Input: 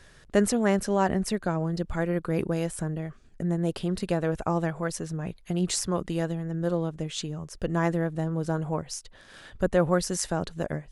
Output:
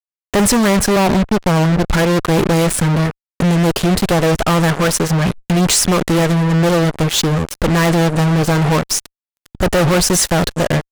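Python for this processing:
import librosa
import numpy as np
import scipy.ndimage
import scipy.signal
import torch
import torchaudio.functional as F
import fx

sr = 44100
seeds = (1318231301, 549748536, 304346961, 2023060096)

y = fx.lowpass(x, sr, hz=1000.0, slope=24, at=(0.96, 1.88))
y = fx.fuzz(y, sr, gain_db=41.0, gate_db=-38.0)
y = fx.pre_swell(y, sr, db_per_s=130.0, at=(5.22, 5.75))
y = y * librosa.db_to_amplitude(2.5)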